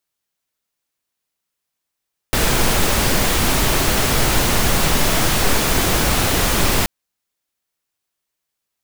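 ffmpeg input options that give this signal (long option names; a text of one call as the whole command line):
ffmpeg -f lavfi -i "anoisesrc=color=pink:amplitude=0.813:duration=4.53:sample_rate=44100:seed=1" out.wav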